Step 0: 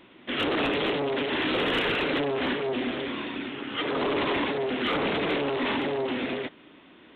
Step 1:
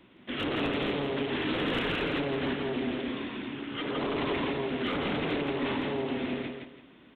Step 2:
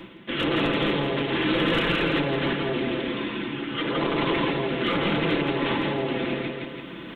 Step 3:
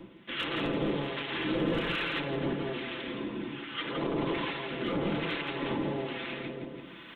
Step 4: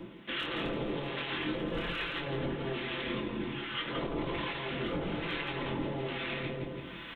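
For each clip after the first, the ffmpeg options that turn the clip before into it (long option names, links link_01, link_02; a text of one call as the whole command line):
ffmpeg -i in.wav -filter_complex "[0:a]acrossover=split=250[link_01][link_02];[link_01]acontrast=80[link_03];[link_03][link_02]amix=inputs=2:normalize=0,aecho=1:1:167|334|501|668:0.562|0.157|0.0441|0.0123,volume=-6.5dB" out.wav
ffmpeg -i in.wav -af "areverse,acompressor=mode=upward:threshold=-33dB:ratio=2.5,areverse,bandreject=frequency=720:width=12,aecho=1:1:5.9:0.5,volume=6dB" out.wav
ffmpeg -i in.wav -filter_complex "[0:a]acrossover=split=880[link_01][link_02];[link_01]aeval=exprs='val(0)*(1-0.7/2+0.7/2*cos(2*PI*1.2*n/s))':channel_layout=same[link_03];[link_02]aeval=exprs='val(0)*(1-0.7/2-0.7/2*cos(2*PI*1.2*n/s))':channel_layout=same[link_04];[link_03][link_04]amix=inputs=2:normalize=0,volume=-4.5dB" out.wav
ffmpeg -i in.wav -filter_complex "[0:a]asubboost=boost=2.5:cutoff=120,alimiter=level_in=4.5dB:limit=-24dB:level=0:latency=1:release=482,volume=-4.5dB,asplit=2[link_01][link_02];[link_02]adelay=23,volume=-5dB[link_03];[link_01][link_03]amix=inputs=2:normalize=0,volume=2.5dB" out.wav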